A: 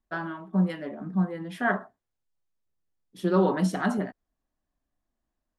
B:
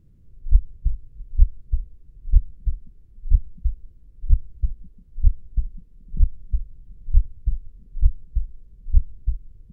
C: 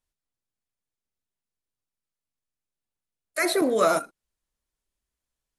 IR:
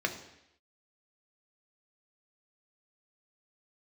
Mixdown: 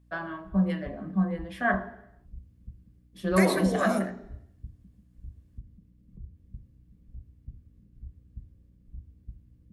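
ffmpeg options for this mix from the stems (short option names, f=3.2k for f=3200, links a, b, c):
-filter_complex "[0:a]volume=-6dB,asplit=2[a][b];[b]volume=-6dB[c];[1:a]agate=range=-33dB:threshold=-42dB:ratio=3:detection=peak,acrossover=split=120|240[d][e][f];[d]acompressor=threshold=-24dB:ratio=4[g];[e]acompressor=threshold=-54dB:ratio=4[h];[f]acompressor=threshold=-59dB:ratio=4[i];[g][h][i]amix=inputs=3:normalize=0,volume=-6dB,asplit=2[j][k];[k]volume=-8.5dB[l];[2:a]acompressor=threshold=-28dB:ratio=6,volume=-2dB,asplit=2[m][n];[n]volume=-9dB[o];[3:a]atrim=start_sample=2205[p];[c][l][o]amix=inputs=3:normalize=0[q];[q][p]afir=irnorm=-1:irlink=0[r];[a][j][m][r]amix=inputs=4:normalize=0,highpass=69,aeval=exprs='val(0)+0.00112*(sin(2*PI*60*n/s)+sin(2*PI*2*60*n/s)/2+sin(2*PI*3*60*n/s)/3+sin(2*PI*4*60*n/s)/4+sin(2*PI*5*60*n/s)/5)':c=same"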